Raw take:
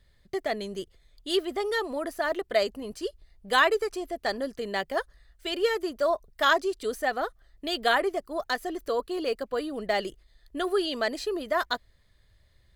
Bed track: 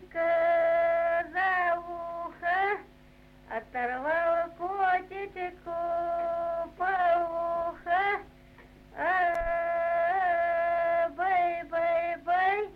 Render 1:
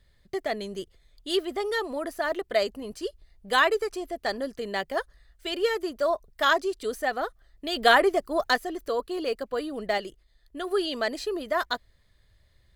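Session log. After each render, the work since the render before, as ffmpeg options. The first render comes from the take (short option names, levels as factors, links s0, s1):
-filter_complex "[0:a]asettb=1/sr,asplit=3[s0][s1][s2];[s0]atrim=end=7.764[s3];[s1]atrim=start=7.76:end=8.58,asetpts=PTS-STARTPTS,afade=t=in:d=0.004:c=qsin,afade=t=out:st=0.816:d=0.004:c=qsin,acontrast=39[s4];[s2]atrim=start=8.576[s5];[s3][s4]acrossfade=d=0.004:c1=hsin:c2=qsin[s6];[s6][s5]acrossfade=d=0.004:c1=qsin:c2=hsin,asplit=3[s7][s8][s9];[s7]atrim=end=9.982[s10];[s8]atrim=start=9.978:end=10.712,asetpts=PTS-STARTPTS,volume=0.631[s11];[s9]atrim=start=10.708[s12];[s10][s11]acrossfade=d=0.004:c1=hsin:c2=hsin[s13];[s13][s12]acrossfade=d=0.004:c1=hsin:c2=hsin"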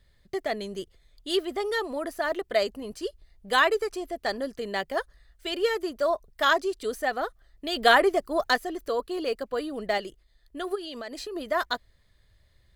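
-filter_complex "[0:a]asplit=3[s0][s1][s2];[s0]afade=t=out:st=10.74:d=0.02[s3];[s1]acompressor=threshold=0.0224:ratio=10:attack=3.2:release=140:knee=1:detection=peak,afade=t=in:st=10.74:d=0.02,afade=t=out:st=11.35:d=0.02[s4];[s2]afade=t=in:st=11.35:d=0.02[s5];[s3][s4][s5]amix=inputs=3:normalize=0"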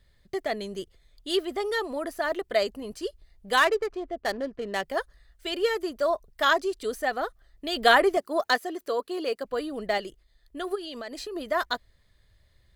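-filter_complex "[0:a]asettb=1/sr,asplit=3[s0][s1][s2];[s0]atrim=end=3.574[s3];[s1]atrim=start=3.57:end=4.83,asetpts=PTS-STARTPTS,afade=t=in:d=0.004:c=qsin,afade=t=out:st=1.256:d=0.004:c=qsin,adynamicsmooth=sensitivity=8:basefreq=1100[s4];[s2]atrim=start=4.826[s5];[s3][s4]acrossfade=d=0.004:c1=hsin:c2=qsin[s6];[s6][s5]acrossfade=d=0.004:c1=qsin:c2=hsin,asettb=1/sr,asplit=3[s7][s8][s9];[s7]atrim=end=8.174[s10];[s8]atrim=start=8.17:end=9.45,asetpts=PTS-STARTPTS,afade=t=in:d=0.004:c=qsin,afade=t=out:st=1.276:d=0.004:c=qsin,highpass=220[s11];[s9]atrim=start=9.446[s12];[s10][s11]acrossfade=d=0.004:c1=hsin:c2=qsin[s13];[s13][s12]acrossfade=d=0.004:c1=qsin:c2=hsin"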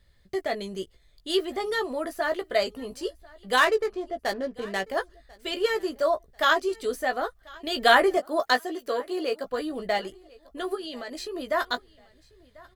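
-filter_complex "[0:a]asplit=2[s0][s1];[s1]adelay=16,volume=0.447[s2];[s0][s2]amix=inputs=2:normalize=0,aecho=1:1:1042|2084:0.0631|0.0221"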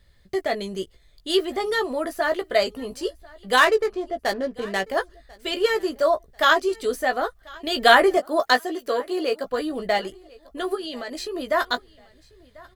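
-af "volume=1.58,alimiter=limit=0.794:level=0:latency=1"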